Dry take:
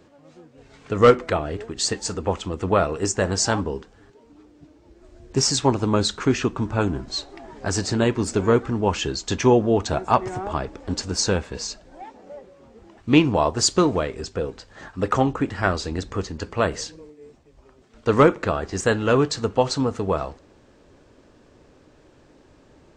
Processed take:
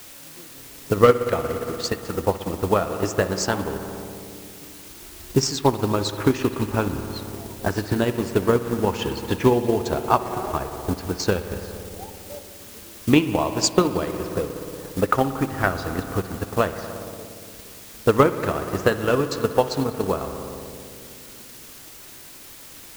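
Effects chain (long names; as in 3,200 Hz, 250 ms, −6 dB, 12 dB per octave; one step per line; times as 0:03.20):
spring reverb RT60 3.1 s, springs 58 ms, chirp 40 ms, DRR 5.5 dB
in parallel at +1 dB: downward compressor, threshold −26 dBFS, peak gain reduction 17.5 dB
on the sum: low-pass that shuts in the quiet parts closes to 370 Hz, open at −12 dBFS
bit-depth reduction 6 bits, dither triangular
transient designer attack +8 dB, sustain −4 dB
level −7 dB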